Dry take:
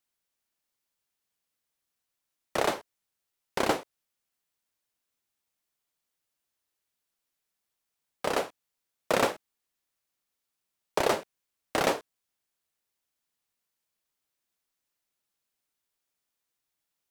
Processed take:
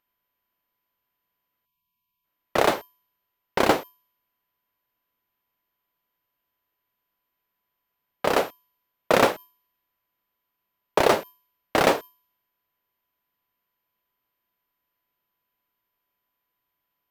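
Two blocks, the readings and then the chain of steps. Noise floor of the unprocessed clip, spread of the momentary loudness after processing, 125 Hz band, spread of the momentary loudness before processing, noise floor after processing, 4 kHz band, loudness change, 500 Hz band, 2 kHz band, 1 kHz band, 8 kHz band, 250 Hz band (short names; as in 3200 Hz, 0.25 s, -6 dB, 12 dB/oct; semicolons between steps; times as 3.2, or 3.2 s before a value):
-85 dBFS, 11 LU, +7.0 dB, 10 LU, -81 dBFS, +5.5 dB, +6.5 dB, +7.0 dB, +6.5 dB, +7.0 dB, +3.0 dB, +7.0 dB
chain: whine 13000 Hz -51 dBFS; spectral delete 1.65–2.25, 240–2200 Hz; low-pass opened by the level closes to 2600 Hz, open at -27 dBFS; in parallel at -6 dB: sample-rate reducer 14000 Hz, jitter 0%; on the sum: gain +3.5 dB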